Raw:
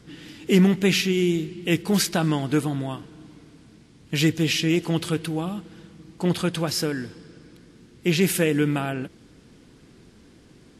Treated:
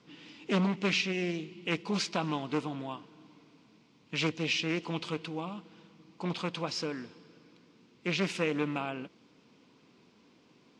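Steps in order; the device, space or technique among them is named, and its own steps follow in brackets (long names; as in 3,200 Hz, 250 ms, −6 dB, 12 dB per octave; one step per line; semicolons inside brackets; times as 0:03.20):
full-range speaker at full volume (highs frequency-modulated by the lows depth 0.45 ms; loudspeaker in its box 210–6,200 Hz, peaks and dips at 350 Hz −4 dB, 1,000 Hz +7 dB, 1,700 Hz −6 dB, 2,500 Hz +5 dB)
level −7.5 dB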